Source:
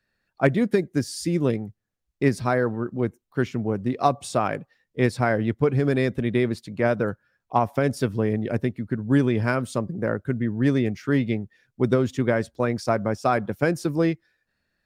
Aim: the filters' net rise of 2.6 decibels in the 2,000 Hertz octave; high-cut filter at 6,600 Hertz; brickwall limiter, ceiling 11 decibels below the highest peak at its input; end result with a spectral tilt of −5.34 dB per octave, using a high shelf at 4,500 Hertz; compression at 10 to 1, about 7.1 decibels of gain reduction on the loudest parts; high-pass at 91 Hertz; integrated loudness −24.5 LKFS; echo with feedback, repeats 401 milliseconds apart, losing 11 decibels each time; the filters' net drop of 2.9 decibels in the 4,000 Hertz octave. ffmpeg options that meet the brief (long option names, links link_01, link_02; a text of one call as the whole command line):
ffmpeg -i in.wav -af "highpass=91,lowpass=6600,equalizer=frequency=2000:width_type=o:gain=4,equalizer=frequency=4000:width_type=o:gain=-7,highshelf=frequency=4500:gain=5,acompressor=threshold=-21dB:ratio=10,alimiter=limit=-20dB:level=0:latency=1,aecho=1:1:401|802|1203:0.282|0.0789|0.0221,volume=7.5dB" out.wav